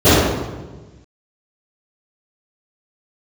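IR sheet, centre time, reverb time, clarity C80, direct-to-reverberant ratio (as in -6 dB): 0.113 s, 1.3 s, -0.5 dB, -23.0 dB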